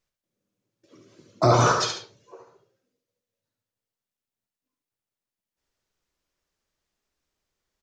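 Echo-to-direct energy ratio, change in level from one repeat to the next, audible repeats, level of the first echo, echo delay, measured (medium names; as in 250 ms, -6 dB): -5.5 dB, -9.0 dB, 2, -6.0 dB, 71 ms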